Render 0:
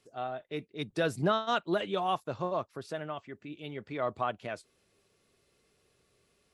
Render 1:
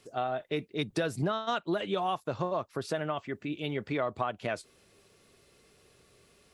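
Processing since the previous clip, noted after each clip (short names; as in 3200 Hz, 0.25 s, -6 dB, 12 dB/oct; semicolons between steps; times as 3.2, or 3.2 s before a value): compressor 6:1, threshold -36 dBFS, peak gain reduction 13 dB; gain +8.5 dB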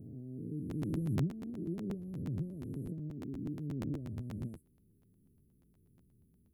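spectral swells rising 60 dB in 2.02 s; inverse Chebyshev band-stop 790–6100 Hz, stop band 60 dB; crackling interface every 0.12 s, samples 512, repeat, from 0.69; gain -1.5 dB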